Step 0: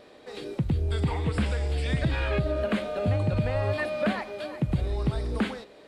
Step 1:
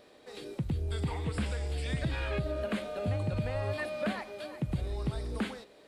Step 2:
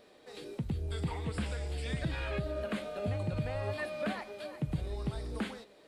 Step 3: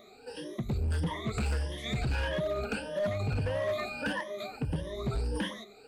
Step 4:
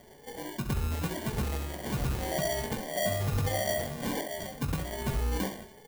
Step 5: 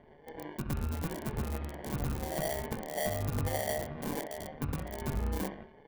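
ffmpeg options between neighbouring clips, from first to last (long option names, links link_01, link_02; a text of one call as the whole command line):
ffmpeg -i in.wav -af "highshelf=frequency=6500:gain=8.5,volume=-6.5dB" out.wav
ffmpeg -i in.wav -af "flanger=delay=4.2:depth=2.9:regen=76:speed=1.6:shape=triangular,volume=2.5dB" out.wav
ffmpeg -i in.wav -af "afftfilt=real='re*pow(10,23/40*sin(2*PI*(1.2*log(max(b,1)*sr/1024/100)/log(2)-(1.6)*(pts-256)/sr)))':imag='im*pow(10,23/40*sin(2*PI*(1.2*log(max(b,1)*sr/1024/100)/log(2)-(1.6)*(pts-256)/sr)))':win_size=1024:overlap=0.75,asoftclip=type=hard:threshold=-26.5dB" out.wav
ffmpeg -i in.wav -af "acrusher=samples=34:mix=1:aa=0.000001,highshelf=frequency=9800:gain=9,aecho=1:1:21|67:0.376|0.335" out.wav
ffmpeg -i in.wav -filter_complex "[0:a]acrossover=split=2800[link_01][link_02];[link_02]acrusher=bits=4:mix=0:aa=0.000001[link_03];[link_01][link_03]amix=inputs=2:normalize=0,tremolo=f=150:d=0.71" out.wav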